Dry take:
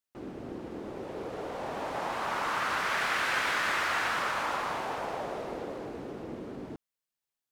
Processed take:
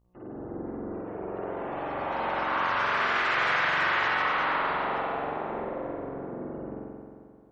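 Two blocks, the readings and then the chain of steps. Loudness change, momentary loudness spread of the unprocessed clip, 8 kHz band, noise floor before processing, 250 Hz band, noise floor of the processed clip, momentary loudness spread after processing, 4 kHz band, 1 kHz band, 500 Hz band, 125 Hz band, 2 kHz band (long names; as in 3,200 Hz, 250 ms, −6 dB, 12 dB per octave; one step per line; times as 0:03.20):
+3.5 dB, 14 LU, below −10 dB, below −85 dBFS, +4.0 dB, −52 dBFS, 14 LU, +1.0 dB, +4.0 dB, +3.5 dB, +3.5 dB, +4.0 dB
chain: gate on every frequency bin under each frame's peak −25 dB strong
hum with harmonics 60 Hz, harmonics 20, −64 dBFS −7 dB per octave
spring reverb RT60 2.2 s, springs 44 ms, chirp 30 ms, DRR −6 dB
level −3.5 dB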